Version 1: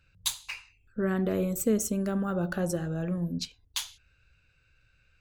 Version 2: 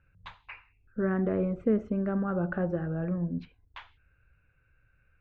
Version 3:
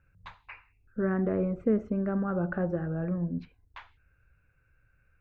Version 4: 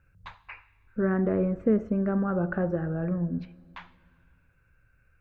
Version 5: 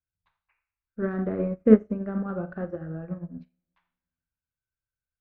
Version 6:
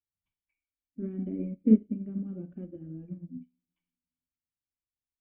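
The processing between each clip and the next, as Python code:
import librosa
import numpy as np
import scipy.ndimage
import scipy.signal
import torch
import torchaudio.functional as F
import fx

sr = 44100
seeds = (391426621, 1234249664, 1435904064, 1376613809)

y1 = scipy.signal.sosfilt(scipy.signal.butter(4, 2000.0, 'lowpass', fs=sr, output='sos'), x)
y2 = fx.peak_eq(y1, sr, hz=3200.0, db=-5.5, octaves=0.56)
y3 = fx.rev_plate(y2, sr, seeds[0], rt60_s=2.2, hf_ratio=0.9, predelay_ms=0, drr_db=19.0)
y3 = y3 * librosa.db_to_amplitude(2.5)
y4 = fx.cheby_harmonics(y3, sr, harmonics=(7,), levels_db=(-39,), full_scale_db=-12.5)
y4 = fx.rev_schroeder(y4, sr, rt60_s=0.46, comb_ms=25, drr_db=6.0)
y4 = fx.upward_expand(y4, sr, threshold_db=-43.0, expansion=2.5)
y4 = y4 * librosa.db_to_amplitude(8.0)
y5 = fx.spec_quant(y4, sr, step_db=15)
y5 = fx.formant_cascade(y5, sr, vowel='i')
y5 = y5 * librosa.db_to_amplitude(3.0)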